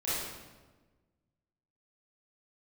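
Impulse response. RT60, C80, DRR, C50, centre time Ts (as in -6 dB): 1.3 s, 0.5 dB, -11.5 dB, -3.5 dB, 99 ms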